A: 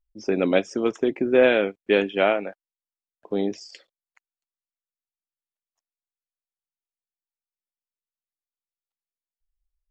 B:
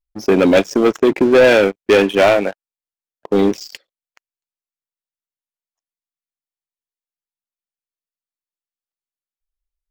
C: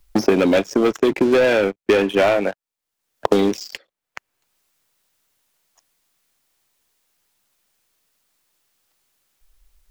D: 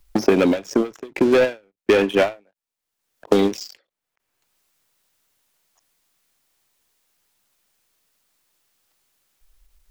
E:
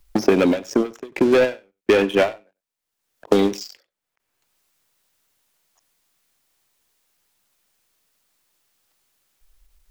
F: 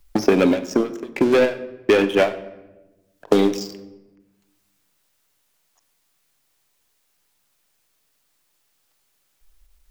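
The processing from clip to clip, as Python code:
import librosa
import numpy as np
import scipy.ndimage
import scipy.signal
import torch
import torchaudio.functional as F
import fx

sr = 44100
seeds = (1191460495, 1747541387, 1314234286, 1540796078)

y1 = fx.leveller(x, sr, passes=3)
y1 = y1 * 10.0 ** (1.5 / 20.0)
y2 = fx.band_squash(y1, sr, depth_pct=100)
y2 = y2 * 10.0 ** (-4.0 / 20.0)
y3 = fx.end_taper(y2, sr, db_per_s=230.0)
y4 = y3 + 10.0 ** (-22.0 / 20.0) * np.pad(y3, (int(95 * sr / 1000.0), 0))[:len(y3)]
y5 = fx.room_shoebox(y4, sr, seeds[0], volume_m3=550.0, walls='mixed', distance_m=0.34)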